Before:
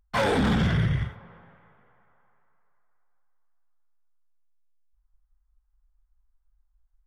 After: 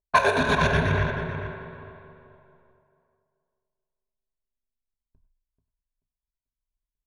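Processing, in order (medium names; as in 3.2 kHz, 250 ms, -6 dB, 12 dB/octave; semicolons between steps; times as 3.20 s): resonant low shelf 350 Hz -9 dB, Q 1.5; compression 6:1, threshold -27 dBFS, peak gain reduction 7.5 dB; level-controlled noise filter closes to 700 Hz, open at -27 dBFS; square tremolo 8.2 Hz, depth 65%, duty 50%; spring tank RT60 2.3 s, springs 42 ms, chirp 80 ms, DRR 6.5 dB; gate with hold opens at -60 dBFS; rippled EQ curve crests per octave 1.5, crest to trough 14 dB; tape echo 436 ms, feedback 31%, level -5 dB, low-pass 1.3 kHz; trim +9 dB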